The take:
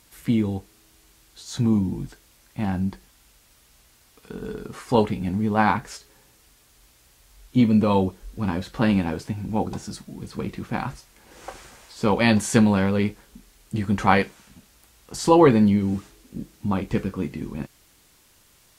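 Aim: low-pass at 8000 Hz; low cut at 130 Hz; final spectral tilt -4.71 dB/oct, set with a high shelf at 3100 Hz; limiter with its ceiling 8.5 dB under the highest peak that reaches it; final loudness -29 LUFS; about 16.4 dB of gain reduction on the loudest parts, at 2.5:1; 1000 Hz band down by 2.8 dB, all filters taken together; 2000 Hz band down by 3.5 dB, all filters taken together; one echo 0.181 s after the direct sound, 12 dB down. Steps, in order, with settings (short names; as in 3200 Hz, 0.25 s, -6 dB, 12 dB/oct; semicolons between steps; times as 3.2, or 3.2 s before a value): HPF 130 Hz; LPF 8000 Hz; bell 1000 Hz -3 dB; bell 2000 Hz -6.5 dB; high shelf 3100 Hz +8.5 dB; compressor 2.5:1, threshold -38 dBFS; limiter -27 dBFS; echo 0.181 s -12 dB; gain +10 dB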